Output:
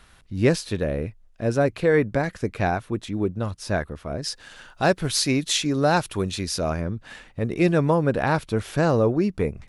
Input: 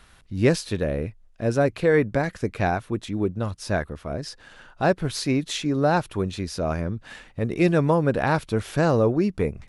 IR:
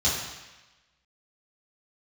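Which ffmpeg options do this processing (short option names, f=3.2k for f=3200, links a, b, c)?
-filter_complex "[0:a]asettb=1/sr,asplit=3[a][b][c];[a]atrim=end=4.244[d];[b]atrim=start=4.24:end=6.7,asetpts=PTS-STARTPTS,afade=t=in:d=0.004:c=qsin,afade=t=out:st=2.456:d=0.004:c=qsin,highshelf=f=2.6k:g=9.5[e];[c]atrim=start=6.696[f];[d][e]acrossfade=d=0.004:c1=hsin:c2=qsin[g];[g][f]acrossfade=d=0.004:c1=qsin:c2=hsin"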